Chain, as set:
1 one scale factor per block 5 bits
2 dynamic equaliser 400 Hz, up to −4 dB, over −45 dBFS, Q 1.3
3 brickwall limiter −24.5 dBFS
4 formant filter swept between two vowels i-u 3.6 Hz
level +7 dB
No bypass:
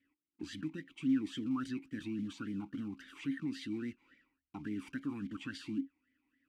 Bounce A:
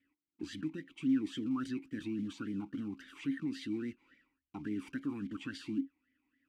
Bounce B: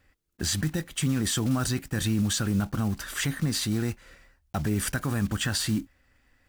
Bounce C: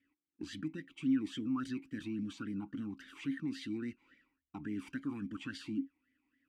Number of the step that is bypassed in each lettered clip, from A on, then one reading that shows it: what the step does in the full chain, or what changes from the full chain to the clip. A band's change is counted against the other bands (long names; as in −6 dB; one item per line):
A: 2, 500 Hz band +3.0 dB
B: 4, 125 Hz band +7.0 dB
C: 1, distortion level −23 dB